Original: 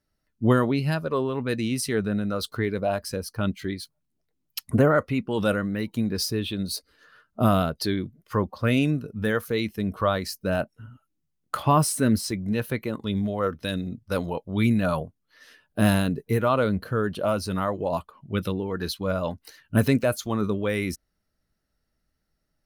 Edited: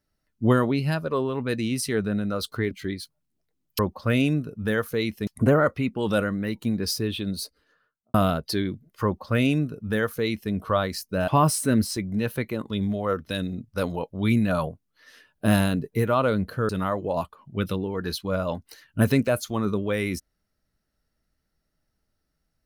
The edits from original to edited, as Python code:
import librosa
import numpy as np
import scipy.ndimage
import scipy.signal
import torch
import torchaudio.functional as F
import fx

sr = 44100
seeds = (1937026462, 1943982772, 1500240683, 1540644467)

y = fx.studio_fade_out(x, sr, start_s=6.59, length_s=0.87)
y = fx.edit(y, sr, fx.cut(start_s=2.71, length_s=0.8),
    fx.duplicate(start_s=8.36, length_s=1.48, to_s=4.59),
    fx.cut(start_s=10.6, length_s=1.02),
    fx.cut(start_s=17.03, length_s=0.42), tone=tone)